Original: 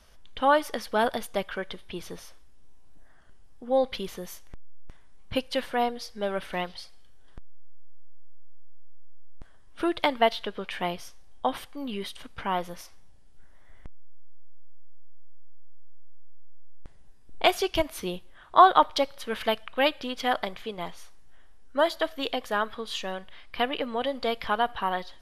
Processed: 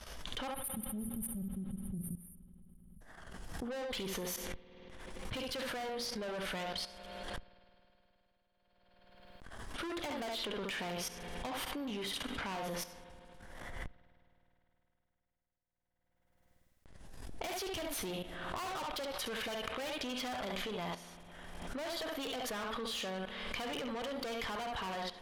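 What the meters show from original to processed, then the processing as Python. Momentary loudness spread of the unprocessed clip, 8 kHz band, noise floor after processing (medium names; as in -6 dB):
16 LU, +1.0 dB, -79 dBFS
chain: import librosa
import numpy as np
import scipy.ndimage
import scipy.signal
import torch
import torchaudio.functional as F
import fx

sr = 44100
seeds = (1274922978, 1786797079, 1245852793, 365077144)

p1 = fx.spec_erase(x, sr, start_s=0.47, length_s=2.54, low_hz=220.0, high_hz=8800.0)
p2 = fx.low_shelf(p1, sr, hz=120.0, db=-3.5)
p3 = p2 + fx.room_early_taps(p2, sr, ms=(48, 69), db=(-17.5, -10.0), dry=0)
p4 = fx.tube_stage(p3, sr, drive_db=35.0, bias=0.7)
p5 = fx.level_steps(p4, sr, step_db=16)
p6 = fx.rev_spring(p5, sr, rt60_s=3.4, pass_ms=(52,), chirp_ms=55, drr_db=15.0)
p7 = fx.pre_swell(p6, sr, db_per_s=30.0)
y = p7 * 10.0 ** (8.5 / 20.0)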